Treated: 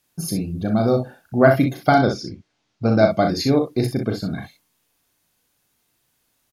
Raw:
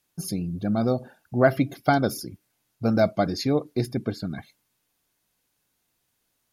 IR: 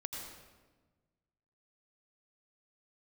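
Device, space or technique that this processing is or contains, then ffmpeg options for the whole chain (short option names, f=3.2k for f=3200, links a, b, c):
slapback doubling: -filter_complex "[0:a]asplit=3[a][b][c];[b]adelay=37,volume=-6dB[d];[c]adelay=61,volume=-7dB[e];[a][d][e]amix=inputs=3:normalize=0,asettb=1/sr,asplit=3[f][g][h];[f]atrim=end=1.984[i];[g]atrim=start=1.98:end=3.11,asetpts=PTS-STARTPTS,afade=t=in:d=0.004:c=qsin,afade=t=out:st=1.126:d=0.004:c=qsin,lowpass=f=5.9k:w=0.5412,lowpass=f=5.9k:w=1.3066[j];[h]atrim=start=3.106[k];[i][j]acrossfade=d=0.004:c1=hsin:c2=qsin[l];[l][k]acrossfade=d=0.004:c1=qsin:c2=hsin,volume=4dB"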